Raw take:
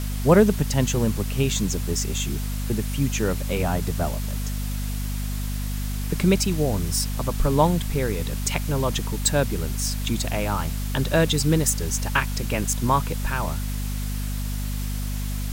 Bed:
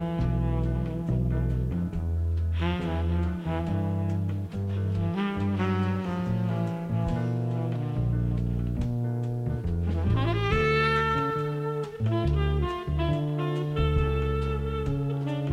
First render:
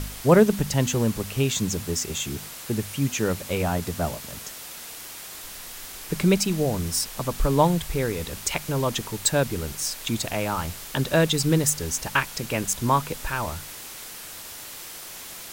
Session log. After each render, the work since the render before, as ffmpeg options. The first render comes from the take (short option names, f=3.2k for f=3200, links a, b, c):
-af "bandreject=f=50:t=h:w=4,bandreject=f=100:t=h:w=4,bandreject=f=150:t=h:w=4,bandreject=f=200:t=h:w=4,bandreject=f=250:t=h:w=4"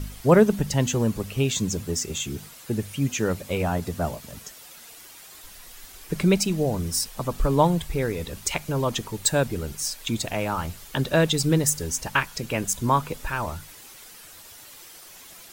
-af "afftdn=nr=9:nf=-40"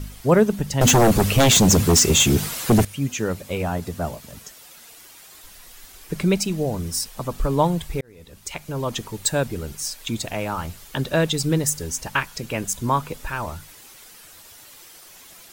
-filter_complex "[0:a]asettb=1/sr,asplit=3[a][b][c];[a]atrim=end=0.814[d];[b]atrim=start=0.81:end=2.85,asetpts=PTS-STARTPTS,afade=t=in:d=0.004:c=qsin,afade=t=out:st=2.036:d=0.004:c=qsin,aeval=exprs='0.299*sin(PI/2*3.98*val(0)/0.299)':c=same[e];[c]atrim=start=2.846[f];[d][e]acrossfade=d=0.004:c1=hsin:c2=qsin[g];[g][f]acrossfade=d=0.004:c1=qsin:c2=hsin,asplit=2[h][i];[h]atrim=end=8.01,asetpts=PTS-STARTPTS,afade=t=out:st=8.006:d=0.004:c=hsin[j];[i]atrim=start=8.01,asetpts=PTS-STARTPTS,afade=t=in:d=0.98[k];[j][k]concat=n=2:v=0:a=1"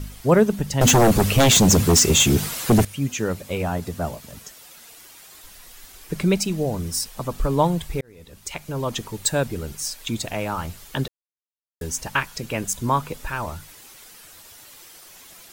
-filter_complex "[0:a]asplit=3[a][b][c];[a]atrim=end=11.08,asetpts=PTS-STARTPTS,afade=t=out:st=11.076:d=0.004:c=hsin[d];[b]atrim=start=11.08:end=11.81,asetpts=PTS-STARTPTS,volume=0[e];[c]atrim=start=11.81,asetpts=PTS-STARTPTS,afade=t=in:d=0.004:c=hsin[f];[d][e][f]concat=n=3:v=0:a=1"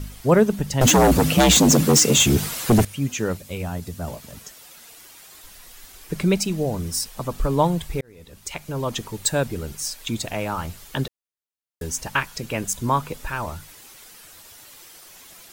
-filter_complex "[0:a]asettb=1/sr,asplit=3[a][b][c];[a]atrim=end=0.904[d];[b]atrim=start=0.9:end=2.17,asetpts=PTS-STARTPTS,afade=t=in:d=0.004:c=qsin,afade=t=out:st=1.266:d=0.004:c=qsin,afreqshift=58[e];[c]atrim=start=2.166[f];[d][e]acrossfade=d=0.004:c1=hsin:c2=qsin[g];[g][f]acrossfade=d=0.004:c1=qsin:c2=hsin,asettb=1/sr,asplit=3[h][i][j];[h]atrim=end=3.374[k];[i]atrim=start=3.37:end=4.08,asetpts=PTS-STARTPTS,afade=t=in:d=0.004:c=qsin,afade=t=out:st=0.706:d=0.004:c=qsin,equalizer=f=780:w=0.31:g=-7.5[l];[j]atrim=start=4.076[m];[k][l]acrossfade=d=0.004:c1=hsin:c2=qsin[n];[n][m]acrossfade=d=0.004:c1=qsin:c2=hsin"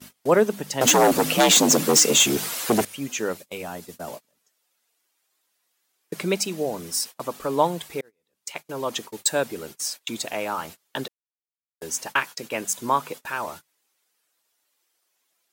-af "agate=range=-27dB:threshold=-33dB:ratio=16:detection=peak,highpass=310"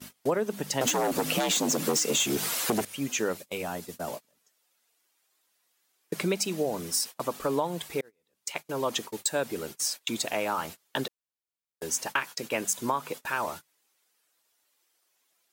-af "alimiter=limit=-11dB:level=0:latency=1:release=298,acompressor=threshold=-23dB:ratio=6"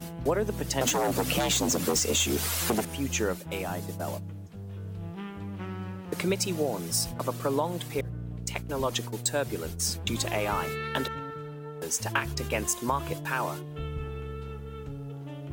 -filter_complex "[1:a]volume=-10.5dB[a];[0:a][a]amix=inputs=2:normalize=0"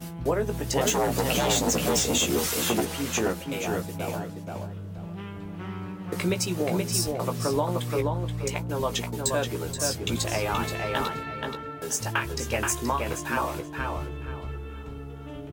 -filter_complex "[0:a]asplit=2[a][b];[b]adelay=17,volume=-7dB[c];[a][c]amix=inputs=2:normalize=0,asplit=2[d][e];[e]adelay=477,lowpass=f=3.4k:p=1,volume=-3dB,asplit=2[f][g];[g]adelay=477,lowpass=f=3.4k:p=1,volume=0.26,asplit=2[h][i];[i]adelay=477,lowpass=f=3.4k:p=1,volume=0.26,asplit=2[j][k];[k]adelay=477,lowpass=f=3.4k:p=1,volume=0.26[l];[d][f][h][j][l]amix=inputs=5:normalize=0"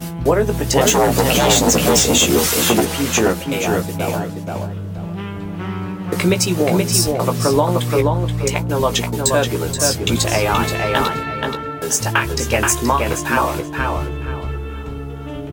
-af "volume=10.5dB,alimiter=limit=-2dB:level=0:latency=1"